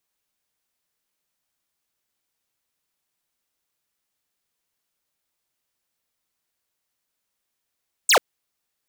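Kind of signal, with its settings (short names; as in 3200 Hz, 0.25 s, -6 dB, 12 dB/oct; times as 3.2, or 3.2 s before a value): laser zap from 9200 Hz, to 400 Hz, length 0.09 s square, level -14.5 dB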